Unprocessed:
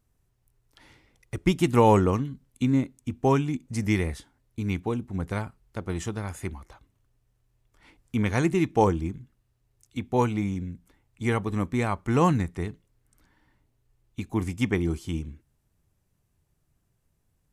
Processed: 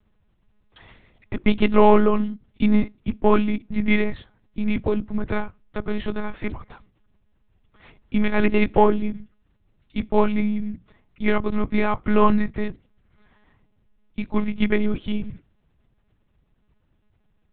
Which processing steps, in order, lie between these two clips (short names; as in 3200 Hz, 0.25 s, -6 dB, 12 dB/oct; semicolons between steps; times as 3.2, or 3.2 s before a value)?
in parallel at -5 dB: soft clip -19 dBFS, distortion -11 dB; on the sum: monotone LPC vocoder at 8 kHz 210 Hz; gain +3 dB